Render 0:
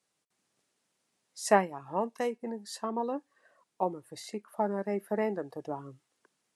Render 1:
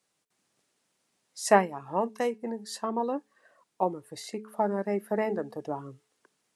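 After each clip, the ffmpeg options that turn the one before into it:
ffmpeg -i in.wav -af "bandreject=frequency=215.8:width_type=h:width=4,bandreject=frequency=431.6:width_type=h:width=4,volume=3dB" out.wav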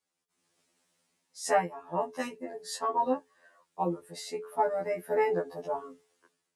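ffmpeg -i in.wav -af "dynaudnorm=framelen=110:gausssize=7:maxgain=10dB,afftfilt=real='re*2*eq(mod(b,4),0)':imag='im*2*eq(mod(b,4),0)':win_size=2048:overlap=0.75,volume=-6.5dB" out.wav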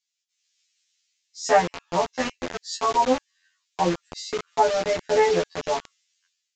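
ffmpeg -i in.wav -filter_complex "[0:a]acrossover=split=2300[link_01][link_02];[link_01]acrusher=bits=5:mix=0:aa=0.000001[link_03];[link_03][link_02]amix=inputs=2:normalize=0,aresample=16000,aresample=44100,volume=7.5dB" out.wav

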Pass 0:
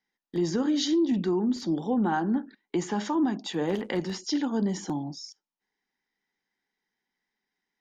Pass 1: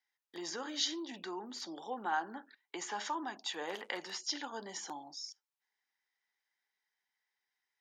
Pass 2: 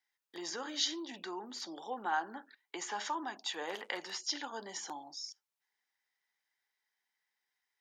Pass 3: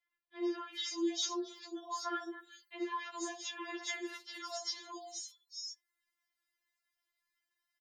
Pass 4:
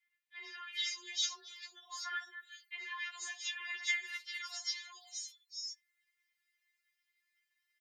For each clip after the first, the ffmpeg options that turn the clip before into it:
ffmpeg -i in.wav -af "highpass=820,volume=-2.5dB" out.wav
ffmpeg -i in.wav -af "lowshelf=frequency=190:gain=-7,volume=1dB" out.wav
ffmpeg -i in.wav -filter_complex "[0:a]acrossover=split=550|3500[link_01][link_02][link_03];[link_01]adelay=60[link_04];[link_03]adelay=400[link_05];[link_04][link_02][link_05]amix=inputs=3:normalize=0,afftfilt=real='re*4*eq(mod(b,16),0)':imag='im*4*eq(mod(b,16),0)':win_size=2048:overlap=0.75,volume=3dB" out.wav
ffmpeg -i in.wav -af "highpass=frequency=2000:width_type=q:width=2.6,afreqshift=21" out.wav

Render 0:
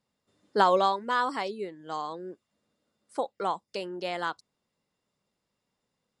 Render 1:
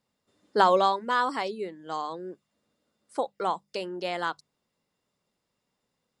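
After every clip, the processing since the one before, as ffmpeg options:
ffmpeg -i in.wav -af "bandreject=frequency=50:width_type=h:width=6,bandreject=frequency=100:width_type=h:width=6,bandreject=frequency=150:width_type=h:width=6,bandreject=frequency=200:width_type=h:width=6,volume=1.5dB" out.wav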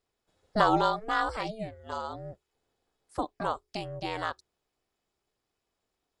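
ffmpeg -i in.wav -af "aeval=exprs='val(0)*sin(2*PI*220*n/s)':channel_layout=same" out.wav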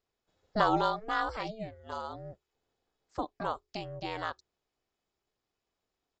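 ffmpeg -i in.wav -af "aresample=16000,aresample=44100,volume=-3dB" out.wav

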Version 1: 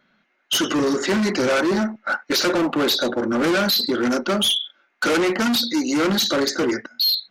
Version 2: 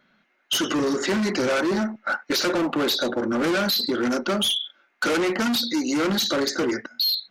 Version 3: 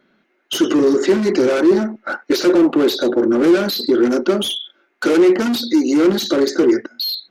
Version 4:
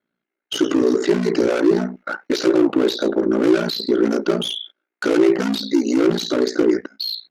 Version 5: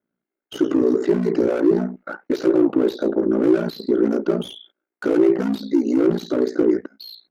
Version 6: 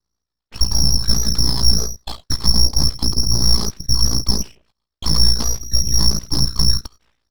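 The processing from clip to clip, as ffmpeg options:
ffmpeg -i in.wav -af "acompressor=threshold=-23dB:ratio=2" out.wav
ffmpeg -i in.wav -af "equalizer=frequency=360:width=1.4:gain=13" out.wav
ffmpeg -i in.wav -filter_complex "[0:a]acrossover=split=9000[link_01][link_02];[link_02]acompressor=threshold=-45dB:ratio=4:attack=1:release=60[link_03];[link_01][link_03]amix=inputs=2:normalize=0,agate=range=-17dB:threshold=-36dB:ratio=16:detection=peak,aeval=exprs='val(0)*sin(2*PI*29*n/s)':channel_layout=same" out.wav
ffmpeg -i in.wav -af "equalizer=frequency=5100:width=0.31:gain=-13.5" out.wav
ffmpeg -i in.wav -filter_complex "[0:a]acrossover=split=420[link_01][link_02];[link_01]aeval=exprs='val(0)*(1-0.5/2+0.5/2*cos(2*PI*8.4*n/s))':channel_layout=same[link_03];[link_02]aeval=exprs='val(0)*(1-0.5/2-0.5/2*cos(2*PI*8.4*n/s))':channel_layout=same[link_04];[link_03][link_04]amix=inputs=2:normalize=0,lowpass=frequency=2600:width_type=q:width=0.5098,lowpass=frequency=2600:width_type=q:width=0.6013,lowpass=frequency=2600:width_type=q:width=0.9,lowpass=frequency=2600:width_type=q:width=2.563,afreqshift=-3100,aeval=exprs='abs(val(0))':channel_layout=same,volume=7dB" out.wav

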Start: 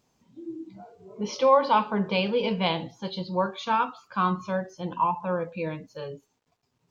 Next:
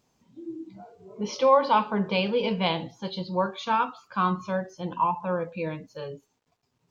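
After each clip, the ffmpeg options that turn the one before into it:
ffmpeg -i in.wav -af anull out.wav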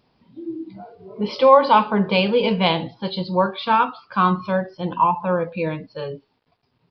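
ffmpeg -i in.wav -af "aresample=11025,aresample=44100,volume=7dB" out.wav

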